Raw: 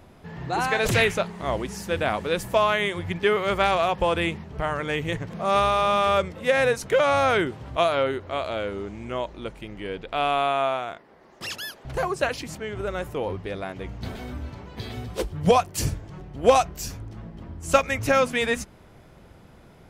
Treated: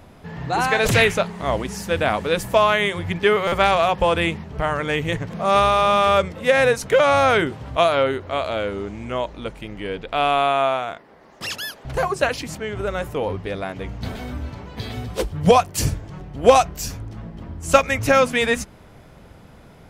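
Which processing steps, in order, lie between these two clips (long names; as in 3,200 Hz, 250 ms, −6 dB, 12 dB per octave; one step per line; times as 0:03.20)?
notch filter 360 Hz, Q 12
buffer that repeats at 0:03.47, samples 256, times 8
level +4.5 dB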